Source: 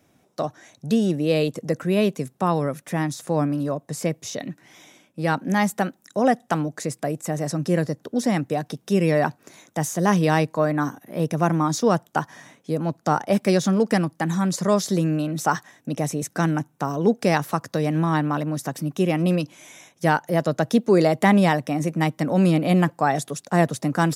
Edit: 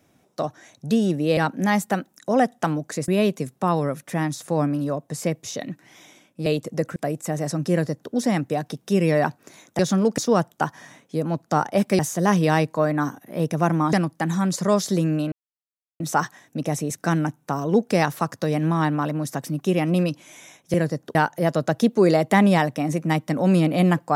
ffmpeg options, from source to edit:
-filter_complex "[0:a]asplit=12[s0][s1][s2][s3][s4][s5][s6][s7][s8][s9][s10][s11];[s0]atrim=end=1.372[s12];[s1]atrim=start=5.248:end=6.962[s13];[s2]atrim=start=1.868:end=5.252[s14];[s3]atrim=start=1.368:end=1.872[s15];[s4]atrim=start=6.958:end=9.792[s16];[s5]atrim=start=13.538:end=13.932[s17];[s6]atrim=start=11.728:end=13.542[s18];[s7]atrim=start=9.788:end=11.732[s19];[s8]atrim=start=13.928:end=15.32,asetpts=PTS-STARTPTS,afade=t=out:st=1.388:d=0.004:c=hsin,apad=pad_dur=0.68[s20];[s9]atrim=start=15.32:end=20.062,asetpts=PTS-STARTPTS,afade=t=in:d=0.004:c=hsin[s21];[s10]atrim=start=7.708:end=8.122[s22];[s11]atrim=start=20.058[s23];[s12][s13]acrossfade=d=0.004:c1=hsin:c2=hsin[s24];[s24][s14]acrossfade=d=0.004:c1=hsin:c2=hsin[s25];[s25][s15]acrossfade=d=0.004:c1=hsin:c2=hsin[s26];[s26][s16]acrossfade=d=0.004:c1=hsin:c2=hsin[s27];[s27][s17]acrossfade=d=0.004:c1=hsin:c2=hsin[s28];[s28][s18]acrossfade=d=0.004:c1=hsin:c2=hsin[s29];[s29][s19]acrossfade=d=0.004:c1=hsin:c2=hsin[s30];[s20][s21]concat=n=2:v=0:a=1[s31];[s30][s31]acrossfade=d=0.004:c1=hsin:c2=hsin[s32];[s32][s22]acrossfade=d=0.004:c1=hsin:c2=hsin[s33];[s33][s23]acrossfade=d=0.004:c1=hsin:c2=hsin"

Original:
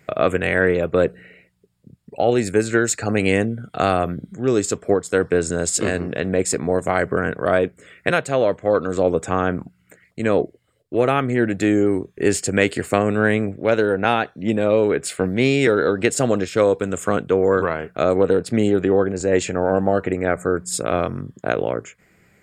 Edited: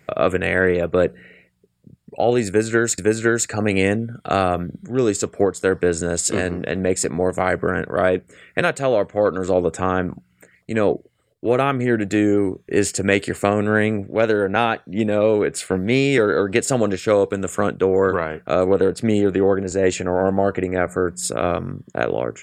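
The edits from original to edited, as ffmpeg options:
-filter_complex "[0:a]asplit=2[s0][s1];[s0]atrim=end=2.982[s2];[s1]atrim=start=2.468[s3];[s2][s3]acrossfade=d=0.004:c1=hsin:c2=hsin"

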